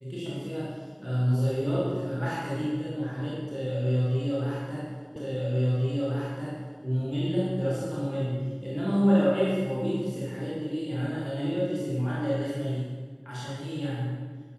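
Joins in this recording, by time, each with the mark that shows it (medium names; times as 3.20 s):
5.16 s: repeat of the last 1.69 s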